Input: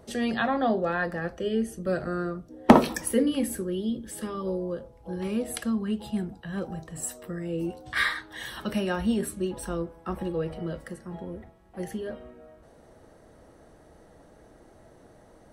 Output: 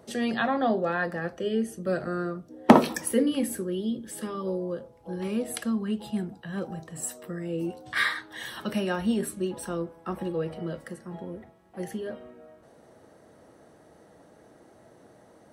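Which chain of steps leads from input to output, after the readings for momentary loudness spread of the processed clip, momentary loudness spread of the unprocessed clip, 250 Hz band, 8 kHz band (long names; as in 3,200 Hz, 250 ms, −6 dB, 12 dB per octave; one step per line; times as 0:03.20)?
13 LU, 13 LU, −0.5 dB, 0.0 dB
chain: high-pass filter 120 Hz 12 dB per octave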